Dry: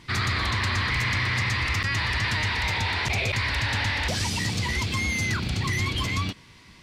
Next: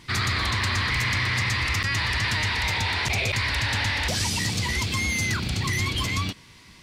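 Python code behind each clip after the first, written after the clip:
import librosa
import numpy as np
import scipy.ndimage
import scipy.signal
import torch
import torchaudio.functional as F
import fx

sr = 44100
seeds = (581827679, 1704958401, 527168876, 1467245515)

y = fx.high_shelf(x, sr, hz=5400.0, db=6.5)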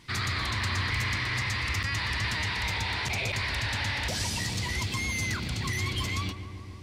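y = fx.echo_filtered(x, sr, ms=141, feedback_pct=84, hz=2000.0, wet_db=-11.5)
y = y * 10.0 ** (-5.5 / 20.0)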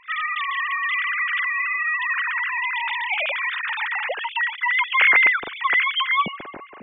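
y = fx.sine_speech(x, sr)
y = y * 10.0 ** (7.5 / 20.0)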